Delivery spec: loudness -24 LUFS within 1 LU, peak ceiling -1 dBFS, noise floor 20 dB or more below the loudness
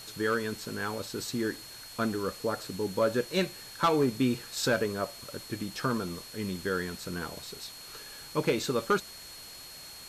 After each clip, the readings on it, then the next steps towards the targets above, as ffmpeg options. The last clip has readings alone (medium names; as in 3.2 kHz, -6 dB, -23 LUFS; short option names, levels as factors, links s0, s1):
steady tone 4.3 kHz; tone level -47 dBFS; noise floor -47 dBFS; noise floor target -52 dBFS; loudness -31.5 LUFS; peak level -17.5 dBFS; loudness target -24.0 LUFS
-> -af "bandreject=f=4300:w=30"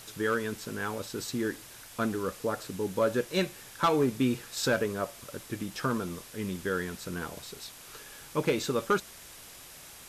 steady tone not found; noise floor -49 dBFS; noise floor target -52 dBFS
-> -af "afftdn=nr=6:nf=-49"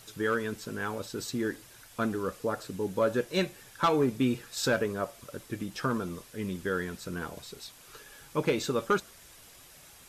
noise floor -54 dBFS; loudness -31.5 LUFS; peak level -17.5 dBFS; loudness target -24.0 LUFS
-> -af "volume=2.37"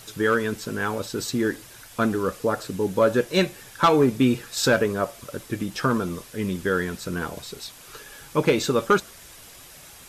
loudness -24.0 LUFS; peak level -10.0 dBFS; noise floor -46 dBFS